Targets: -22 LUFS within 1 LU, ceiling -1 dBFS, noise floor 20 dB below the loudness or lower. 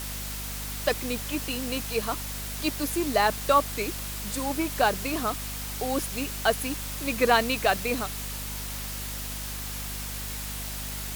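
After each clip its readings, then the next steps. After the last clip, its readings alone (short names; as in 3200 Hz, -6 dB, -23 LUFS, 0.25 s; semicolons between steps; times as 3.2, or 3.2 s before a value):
hum 50 Hz; harmonics up to 250 Hz; hum level -36 dBFS; noise floor -35 dBFS; noise floor target -48 dBFS; loudness -28.0 LUFS; peak -7.5 dBFS; loudness target -22.0 LUFS
-> de-hum 50 Hz, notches 5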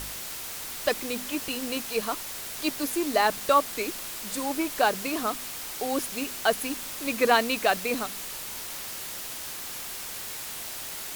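hum none; noise floor -37 dBFS; noise floor target -49 dBFS
-> denoiser 12 dB, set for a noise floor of -37 dBFS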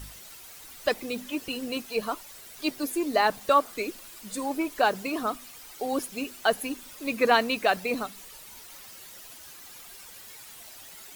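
noise floor -47 dBFS; noise floor target -48 dBFS
-> denoiser 6 dB, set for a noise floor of -47 dBFS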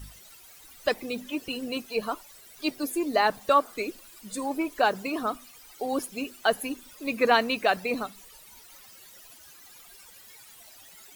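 noise floor -51 dBFS; loudness -28.0 LUFS; peak -8.5 dBFS; loudness target -22.0 LUFS
-> gain +6 dB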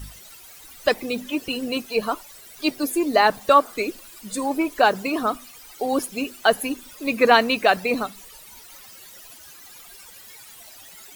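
loudness -22.0 LUFS; peak -2.5 dBFS; noise floor -45 dBFS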